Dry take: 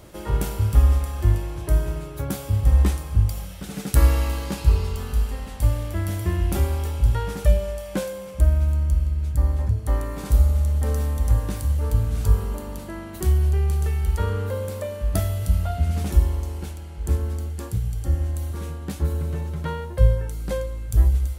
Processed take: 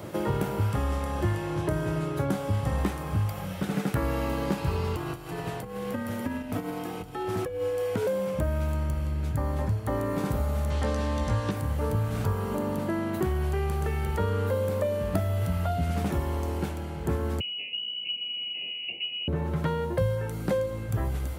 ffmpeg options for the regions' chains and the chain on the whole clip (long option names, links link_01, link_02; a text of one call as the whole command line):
ffmpeg -i in.wav -filter_complex "[0:a]asettb=1/sr,asplit=3[link_01][link_02][link_03];[link_01]atrim=end=0.704[link_04];[link_02]atrim=start=0.7:end=2.78,asetpts=PTS-STARTPTS,afade=type=in:duration=0.004:curve=qsin,afade=type=out:start_time=2.076:duration=0.004:curve=qsin,lowpass=11000,bandreject=frequency=2400:width=23,asplit=2[link_05][link_06];[link_06]adelay=25,volume=-11dB[link_07];[link_05][link_07]amix=inputs=2:normalize=0,atrim=end_sample=91728[link_08];[link_03]atrim=start=2.776[link_09];[link_04][link_08]acrossfade=duration=0.004:curve1=hsin:curve2=qsin[link_10];[link_10][link_09]acrossfade=duration=0.004:curve1=qsin:curve2=hsin,asettb=1/sr,asplit=3[link_11][link_12][link_13];[link_11]atrim=end=4.964[link_14];[link_12]atrim=start=4.96:end=8.07,asetpts=PTS-STARTPTS,afade=type=in:duration=0.004:curve=qsin,afade=type=out:start_time=3.106:duration=0.004:curve=qsin,acompressor=threshold=-28dB:ratio=10:attack=3.2:release=140:knee=1:detection=peak,afreqshift=-94[link_15];[link_13]atrim=start=8.066[link_16];[link_14][link_15]acrossfade=duration=0.004:curve1=hsin:curve2=qsin[link_17];[link_17][link_16]acrossfade=duration=0.004:curve1=qsin:curve2=hsin,asettb=1/sr,asplit=3[link_18][link_19][link_20];[link_18]atrim=end=10.704[link_21];[link_19]atrim=start=10.7:end=11.51,asetpts=PTS-STARTPTS,afade=type=in:duration=0.004:curve=qsin,afade=type=out:start_time=0.806:duration=0.004:curve=qsin,lowpass=7800,equalizer=frequency=4200:width_type=o:width=2.1:gain=10.5,asplit=2[link_22][link_23];[link_23]adelay=17,volume=-5dB[link_24];[link_22][link_24]amix=inputs=2:normalize=0,atrim=end_sample=35721[link_25];[link_20]atrim=start=11.506[link_26];[link_21][link_25]acrossfade=duration=0.004:curve1=hsin:curve2=qsin[link_27];[link_27][link_26]acrossfade=duration=0.004:curve1=qsin:curve2=hsin,asettb=1/sr,asplit=3[link_28][link_29][link_30];[link_28]atrim=end=17.404[link_31];[link_29]atrim=start=17.4:end=19.28,asetpts=PTS-STARTPTS,afade=type=in:duration=0.004:curve=qsin,afade=type=out:start_time=1.876:duration=0.004:curve=qsin,asuperstop=centerf=1500:order=8:qfactor=0.92,lowpass=frequency=2600:width_type=q:width=0.5098,lowpass=frequency=2600:width_type=q:width=0.6013,lowpass=frequency=2600:width_type=q:width=0.9,lowpass=frequency=2600:width_type=q:width=2.563,afreqshift=-3000[link_32];[link_30]atrim=start=19.276[link_33];[link_31][link_32]acrossfade=duration=0.004:curve1=hsin:curve2=qsin[link_34];[link_34][link_33]acrossfade=duration=0.004:curve1=qsin:curve2=hsin,highpass=frequency=100:width=0.5412,highpass=frequency=100:width=1.3066,equalizer=frequency=8400:width_type=o:width=2.8:gain=-9,acrossover=split=650|2700[link_35][link_36][link_37];[link_35]acompressor=threshold=-35dB:ratio=4[link_38];[link_36]acompressor=threshold=-45dB:ratio=4[link_39];[link_37]acompressor=threshold=-56dB:ratio=4[link_40];[link_38][link_39][link_40]amix=inputs=3:normalize=0,volume=9dB" out.wav